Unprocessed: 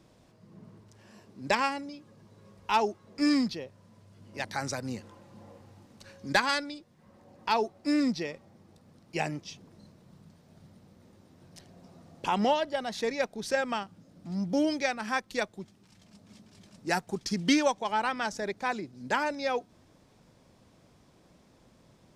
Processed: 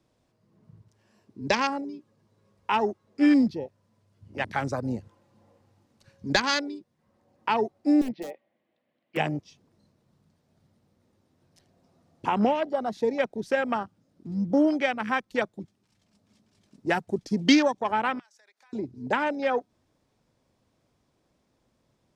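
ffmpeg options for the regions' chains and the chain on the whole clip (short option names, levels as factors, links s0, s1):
-filter_complex "[0:a]asettb=1/sr,asplit=3[s0][s1][s2];[s0]atrim=end=8.014[s3];[s1]atrim=start=8.01:end=9.17,asetpts=PTS-STARTPTS,afade=t=in:d=0.004:c=qsin,afade=t=out:st=1.156:d=0.004:c=qsin,highpass=380,equalizer=f=420:t=q:w=4:g=-8,equalizer=f=600:t=q:w=4:g=3,equalizer=f=870:t=q:w=4:g=-8,equalizer=f=1300:t=q:w=4:g=-9,equalizer=f=2000:t=q:w=4:g=5,equalizer=f=3000:t=q:w=4:g=4,lowpass=f=3300:w=0.5412,lowpass=f=3300:w=1.3066,aeval=exprs='(mod(28.2*val(0)+1,2)-1)/28.2':c=same[s4];[s2]atrim=start=9.166[s5];[s3][s4]acrossfade=d=0.004:c1=hsin:c2=qsin[s6];[s6][s5]acrossfade=d=0.004:c1=qsin:c2=hsin,asettb=1/sr,asplit=3[s7][s8][s9];[s7]atrim=end=18.194[s10];[s8]atrim=start=18.19:end=18.73,asetpts=PTS-STARTPTS,afade=t=in:d=0.004:c=qsin,afade=t=out:st=0.536:d=0.004:c=qsin,highpass=1100,acompressor=threshold=0.00447:ratio=8:attack=3.2:release=140:knee=1:detection=peak[s11];[s9]atrim=start=18.726[s12];[s10][s11]acrossfade=d=0.004:c1=hsin:c2=qsin[s13];[s13][s12]acrossfade=d=0.004:c1=qsin:c2=hsin,afwtdn=0.0178,equalizer=f=180:t=o:w=0.21:g=-6,acrossover=split=350|3000[s14][s15][s16];[s15]acompressor=threshold=0.0355:ratio=6[s17];[s14][s17][s16]amix=inputs=3:normalize=0,volume=2.11"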